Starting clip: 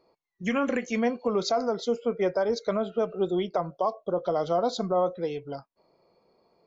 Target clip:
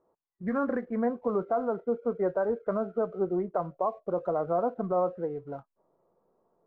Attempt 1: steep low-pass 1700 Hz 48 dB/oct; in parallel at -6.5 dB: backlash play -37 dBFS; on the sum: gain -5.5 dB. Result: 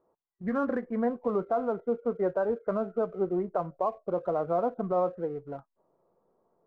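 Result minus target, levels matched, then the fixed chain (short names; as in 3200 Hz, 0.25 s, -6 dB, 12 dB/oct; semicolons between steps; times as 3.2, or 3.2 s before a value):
backlash: distortion +9 dB
steep low-pass 1700 Hz 48 dB/oct; in parallel at -6.5 dB: backlash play -47 dBFS; on the sum: gain -5.5 dB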